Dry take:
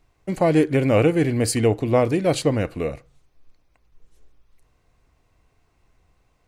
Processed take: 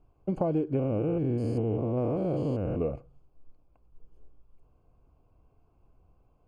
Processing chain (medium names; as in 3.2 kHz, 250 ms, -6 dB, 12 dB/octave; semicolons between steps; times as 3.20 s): 0.79–2.81 s: spectrogram pixelated in time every 200 ms; boxcar filter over 23 samples; compression 6:1, threshold -25 dBFS, peak gain reduction 11.5 dB